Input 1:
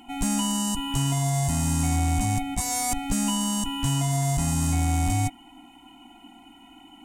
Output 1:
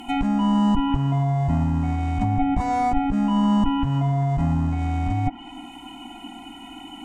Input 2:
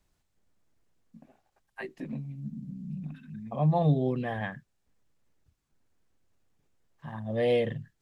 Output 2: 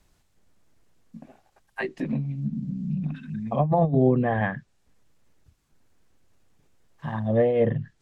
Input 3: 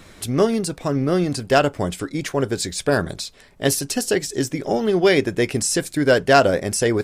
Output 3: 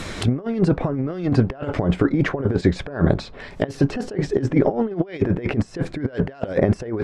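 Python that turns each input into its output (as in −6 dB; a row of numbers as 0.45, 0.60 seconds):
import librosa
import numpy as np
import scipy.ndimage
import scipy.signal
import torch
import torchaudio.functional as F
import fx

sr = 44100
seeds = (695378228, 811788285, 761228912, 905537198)

y = fx.over_compress(x, sr, threshold_db=-26.0, ratio=-0.5)
y = fx.env_lowpass_down(y, sr, base_hz=1300.0, full_db=-25.0)
y = y * librosa.db_to_amplitude(7.5)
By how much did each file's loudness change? +3.0, +5.0, −2.0 LU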